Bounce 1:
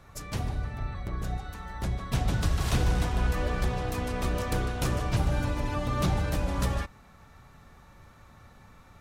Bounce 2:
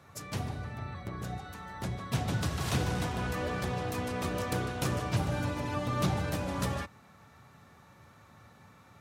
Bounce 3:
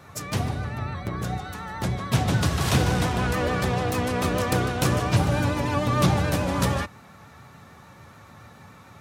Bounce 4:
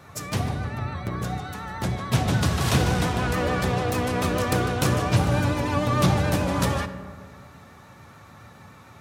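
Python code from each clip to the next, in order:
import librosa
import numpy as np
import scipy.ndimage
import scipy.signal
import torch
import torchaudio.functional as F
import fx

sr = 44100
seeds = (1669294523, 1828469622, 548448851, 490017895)

y1 = scipy.signal.sosfilt(scipy.signal.butter(4, 88.0, 'highpass', fs=sr, output='sos'), x)
y1 = y1 * librosa.db_to_amplitude(-1.5)
y2 = fx.vibrato(y1, sr, rate_hz=6.9, depth_cents=42.0)
y2 = y2 * librosa.db_to_amplitude(9.0)
y3 = fx.rev_freeverb(y2, sr, rt60_s=1.8, hf_ratio=0.35, predelay_ms=15, drr_db=11.5)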